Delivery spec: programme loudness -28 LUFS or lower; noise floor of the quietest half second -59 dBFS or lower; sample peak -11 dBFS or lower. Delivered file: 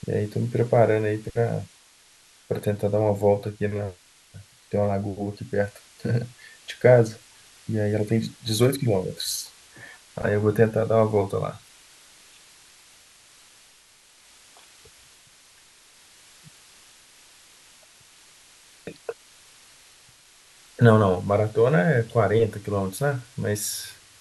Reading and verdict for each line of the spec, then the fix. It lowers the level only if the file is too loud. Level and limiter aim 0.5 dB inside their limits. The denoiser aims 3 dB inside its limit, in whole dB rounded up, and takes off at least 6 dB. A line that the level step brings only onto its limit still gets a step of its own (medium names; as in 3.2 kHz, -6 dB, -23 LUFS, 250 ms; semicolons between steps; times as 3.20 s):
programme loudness -23.5 LUFS: fail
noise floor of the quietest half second -56 dBFS: fail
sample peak -3.5 dBFS: fail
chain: trim -5 dB; peak limiter -11.5 dBFS